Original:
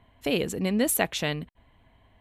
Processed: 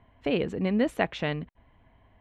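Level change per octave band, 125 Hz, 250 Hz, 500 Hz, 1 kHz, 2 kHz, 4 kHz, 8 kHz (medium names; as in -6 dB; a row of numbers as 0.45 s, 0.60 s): 0.0 dB, 0.0 dB, 0.0 dB, 0.0 dB, -2.0 dB, -6.5 dB, -24.0 dB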